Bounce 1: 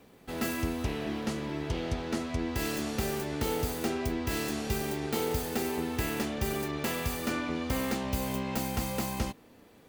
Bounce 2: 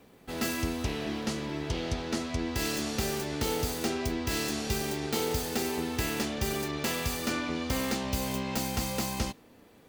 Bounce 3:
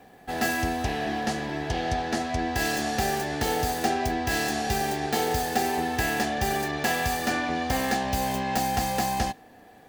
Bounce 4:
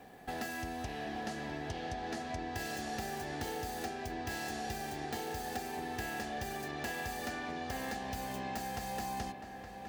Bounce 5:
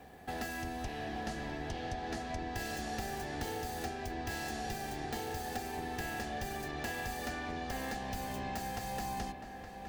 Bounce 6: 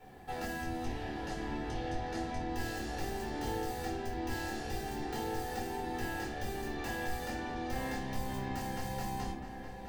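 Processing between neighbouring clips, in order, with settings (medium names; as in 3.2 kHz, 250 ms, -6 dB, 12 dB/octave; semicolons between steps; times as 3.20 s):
dynamic bell 5.2 kHz, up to +6 dB, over -52 dBFS, Q 0.78
small resonant body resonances 750/1700 Hz, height 17 dB, ringing for 45 ms; trim +2 dB
compression 6:1, threshold -35 dBFS, peak gain reduction 14.5 dB; filtered feedback delay 868 ms, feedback 60%, low-pass 3.3 kHz, level -9 dB; trim -2.5 dB
octave divider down 2 oct, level -3 dB
simulated room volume 380 m³, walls furnished, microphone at 4.4 m; trim -7.5 dB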